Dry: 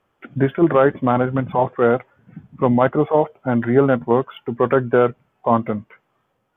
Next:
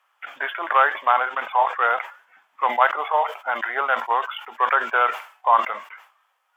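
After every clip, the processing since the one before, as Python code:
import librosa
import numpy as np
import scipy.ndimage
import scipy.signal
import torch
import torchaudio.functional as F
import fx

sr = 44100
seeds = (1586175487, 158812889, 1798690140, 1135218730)

y = scipy.signal.sosfilt(scipy.signal.butter(4, 880.0, 'highpass', fs=sr, output='sos'), x)
y = fx.sustainer(y, sr, db_per_s=130.0)
y = y * 10.0 ** (5.5 / 20.0)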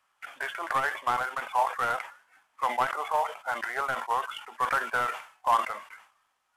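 y = fx.cvsd(x, sr, bps=64000)
y = fx.transformer_sat(y, sr, knee_hz=580.0)
y = y * 10.0 ** (-6.0 / 20.0)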